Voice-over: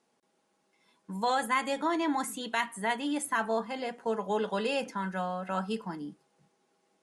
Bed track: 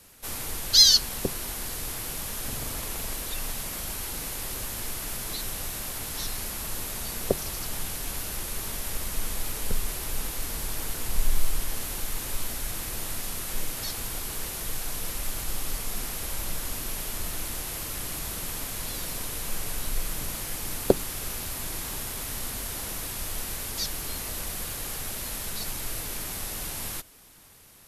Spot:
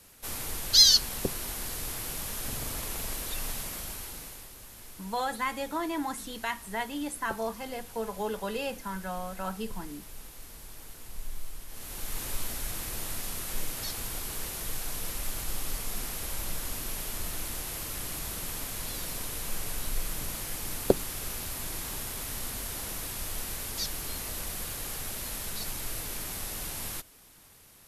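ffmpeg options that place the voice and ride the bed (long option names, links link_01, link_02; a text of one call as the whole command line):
ffmpeg -i stem1.wav -i stem2.wav -filter_complex "[0:a]adelay=3900,volume=-3dB[link_01];[1:a]volume=10dB,afade=type=out:start_time=3.54:duration=0.97:silence=0.237137,afade=type=in:start_time=11.68:duration=0.53:silence=0.251189[link_02];[link_01][link_02]amix=inputs=2:normalize=0" out.wav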